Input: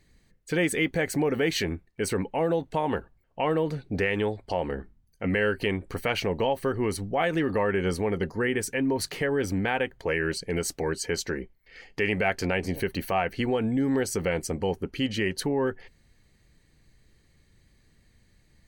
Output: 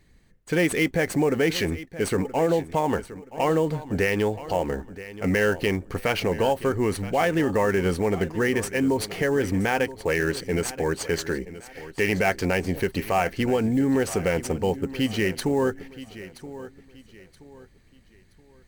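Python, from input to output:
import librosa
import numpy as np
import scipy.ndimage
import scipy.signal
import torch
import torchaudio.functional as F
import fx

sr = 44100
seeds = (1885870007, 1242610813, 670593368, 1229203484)

p1 = fx.echo_feedback(x, sr, ms=975, feedback_pct=33, wet_db=-15.5)
p2 = fx.sample_hold(p1, sr, seeds[0], rate_hz=7800.0, jitter_pct=20)
y = p1 + F.gain(torch.from_numpy(p2), -6.5).numpy()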